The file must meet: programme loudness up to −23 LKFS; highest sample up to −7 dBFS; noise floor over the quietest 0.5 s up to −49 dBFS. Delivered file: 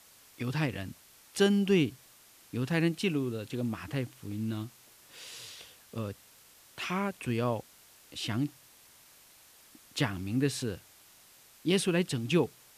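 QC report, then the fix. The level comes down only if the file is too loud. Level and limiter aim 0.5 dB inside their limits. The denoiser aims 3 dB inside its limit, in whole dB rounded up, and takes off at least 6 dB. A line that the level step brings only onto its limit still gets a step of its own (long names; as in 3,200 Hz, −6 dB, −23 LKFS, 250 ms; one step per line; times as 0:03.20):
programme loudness −32.0 LKFS: in spec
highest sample −13.0 dBFS: in spec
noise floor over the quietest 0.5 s −58 dBFS: in spec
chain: no processing needed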